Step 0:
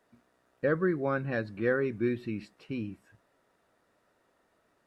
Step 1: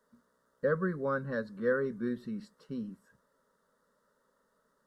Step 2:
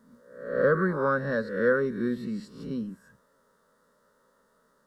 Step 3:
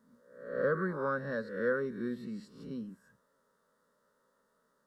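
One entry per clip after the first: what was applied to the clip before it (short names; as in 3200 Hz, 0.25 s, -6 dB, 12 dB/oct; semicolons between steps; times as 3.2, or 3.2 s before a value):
fixed phaser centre 490 Hz, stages 8
spectral swells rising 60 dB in 0.66 s; gain +5 dB
low shelf 65 Hz -6 dB; gain -7.5 dB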